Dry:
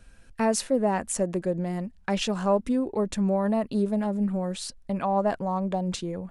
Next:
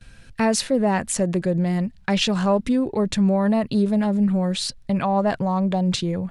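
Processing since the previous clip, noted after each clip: gate with hold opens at -49 dBFS; ten-band EQ 125 Hz +11 dB, 2000 Hz +4 dB, 4000 Hz +7 dB; in parallel at -3 dB: limiter -22 dBFS, peak gain reduction 11.5 dB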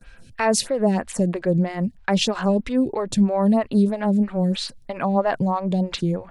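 photocell phaser 3.1 Hz; gain +3 dB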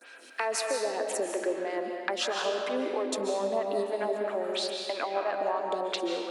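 steep high-pass 290 Hz 48 dB/oct; compressor 3:1, threshold -36 dBFS, peak gain reduction 15.5 dB; reverb RT60 2.1 s, pre-delay 0.105 s, DRR 1.5 dB; gain +3.5 dB

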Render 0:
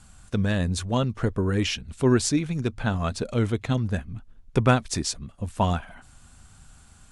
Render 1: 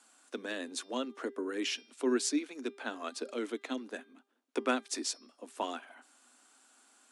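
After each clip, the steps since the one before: steep high-pass 250 Hz 72 dB/oct; de-hum 399.5 Hz, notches 14; dynamic EQ 800 Hz, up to -5 dB, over -36 dBFS, Q 1; gain -6.5 dB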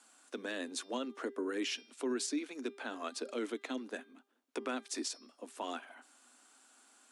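limiter -27.5 dBFS, peak gain reduction 11 dB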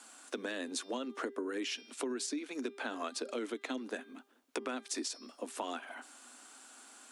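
compressor 5:1, threshold -44 dBFS, peak gain reduction 12 dB; gain +8.5 dB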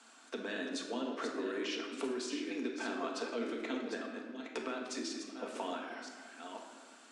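reverse delay 0.507 s, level -7 dB; LPF 5800 Hz 12 dB/oct; shoebox room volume 1100 m³, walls mixed, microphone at 1.6 m; gain -3 dB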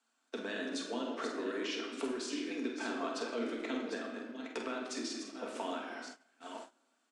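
doubler 47 ms -8 dB; gate -47 dBFS, range -20 dB

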